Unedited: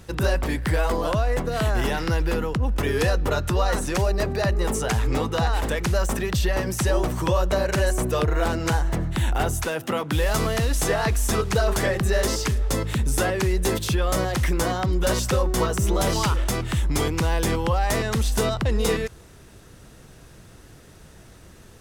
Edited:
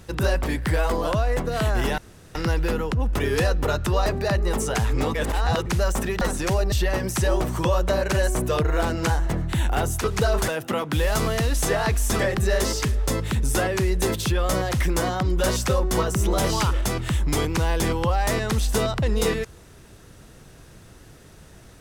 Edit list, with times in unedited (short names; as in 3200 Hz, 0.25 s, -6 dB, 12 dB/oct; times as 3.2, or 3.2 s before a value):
1.98 insert room tone 0.37 s
3.69–4.2 move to 6.35
5.28–5.8 reverse
11.38–11.82 move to 9.67